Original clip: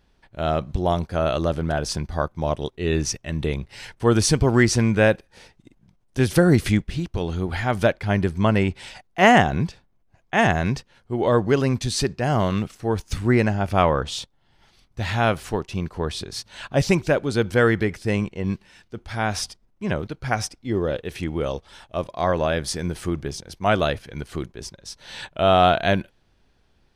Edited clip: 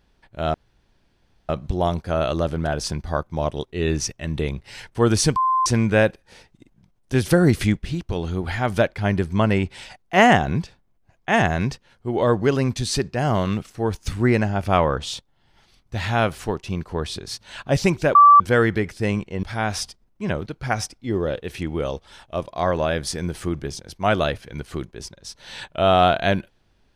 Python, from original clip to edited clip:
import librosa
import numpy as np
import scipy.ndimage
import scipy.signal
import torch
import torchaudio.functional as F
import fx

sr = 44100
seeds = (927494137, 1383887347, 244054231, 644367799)

y = fx.edit(x, sr, fx.insert_room_tone(at_s=0.54, length_s=0.95),
    fx.bleep(start_s=4.41, length_s=0.3, hz=1040.0, db=-16.0),
    fx.bleep(start_s=17.2, length_s=0.25, hz=1160.0, db=-6.5),
    fx.cut(start_s=18.48, length_s=0.56), tone=tone)